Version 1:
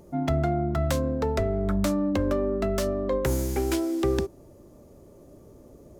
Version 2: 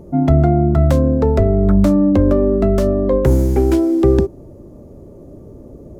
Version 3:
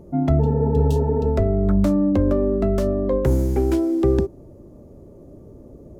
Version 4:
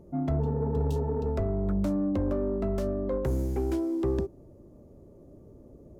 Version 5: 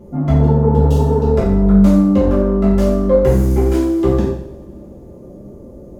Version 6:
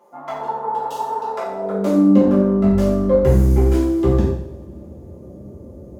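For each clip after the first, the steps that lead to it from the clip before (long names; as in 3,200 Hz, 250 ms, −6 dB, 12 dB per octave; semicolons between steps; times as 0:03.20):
tilt shelving filter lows +8 dB; level +6 dB
healed spectral selection 0:00.42–0:01.25, 220–2,500 Hz after; level −5.5 dB
soft clipping −11.5 dBFS, distortion −19 dB; level −8 dB
coupled-rooms reverb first 0.69 s, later 3.2 s, from −26 dB, DRR −8.5 dB; level +6.5 dB
high-pass filter sweep 930 Hz → 77 Hz, 0:01.39–0:02.80; level −3 dB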